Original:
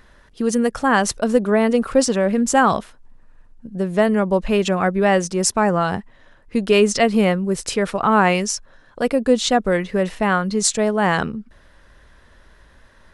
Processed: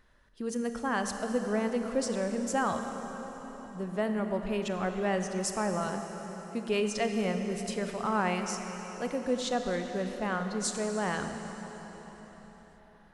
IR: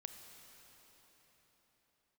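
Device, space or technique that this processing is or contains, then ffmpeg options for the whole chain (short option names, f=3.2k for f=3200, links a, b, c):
cathedral: -filter_complex "[0:a]asettb=1/sr,asplit=3[a][b][c];[a]atrim=end=5.864[d];[b]atrim=start=5.86:end=6.69,asetpts=PTS-STARTPTS,afade=t=in:d=0.004:c=qsin,afade=t=out:st=0.826:d=0.004:c=qsin,highpass=f=140:w=0.5412,highpass=f=140:w=1.3066[e];[c]atrim=start=6.686[f];[d][e]acrossfade=d=0.004:c1=hsin:c2=qsin[g];[g][f]acrossfade=d=0.004:c1=qsin:c2=hsin[h];[1:a]atrim=start_sample=2205[i];[h][i]afir=irnorm=-1:irlink=0,volume=-9dB"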